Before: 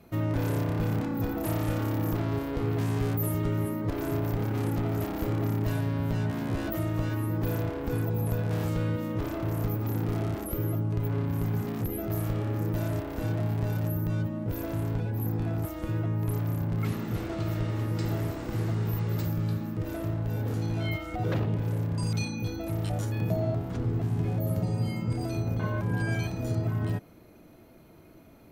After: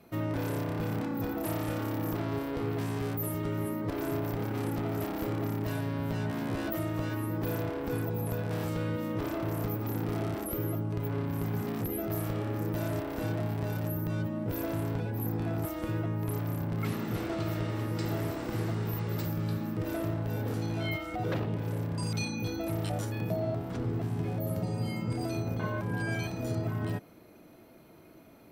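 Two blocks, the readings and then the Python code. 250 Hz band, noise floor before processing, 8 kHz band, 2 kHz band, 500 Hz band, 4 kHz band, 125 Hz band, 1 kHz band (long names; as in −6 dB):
−2.0 dB, −52 dBFS, −0.5 dB, 0.0 dB, −0.5 dB, 0.0 dB, −5.0 dB, −0.5 dB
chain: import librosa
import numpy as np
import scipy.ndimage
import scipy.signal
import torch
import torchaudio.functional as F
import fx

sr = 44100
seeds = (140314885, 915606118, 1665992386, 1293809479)

y = fx.low_shelf(x, sr, hz=100.0, db=-11.5)
y = fx.notch(y, sr, hz=6700.0, q=16.0)
y = fx.rider(y, sr, range_db=10, speed_s=0.5)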